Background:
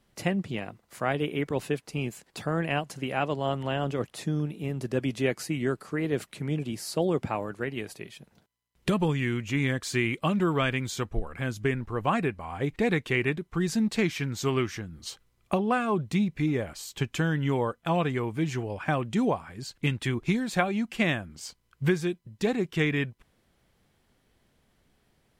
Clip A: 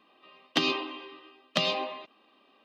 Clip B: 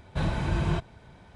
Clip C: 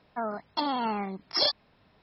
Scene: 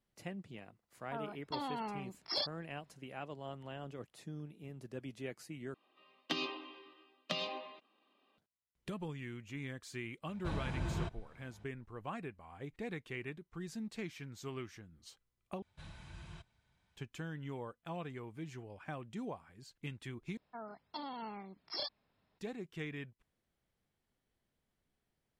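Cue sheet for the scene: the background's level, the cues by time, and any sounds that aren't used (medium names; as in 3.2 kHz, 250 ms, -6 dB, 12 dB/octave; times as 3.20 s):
background -17 dB
0.95 s: add C -11 dB
5.74 s: replace with A -11 dB
10.29 s: add B -11 dB
15.62 s: replace with B -10 dB + amplifier tone stack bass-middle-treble 5-5-5
20.37 s: replace with C -15 dB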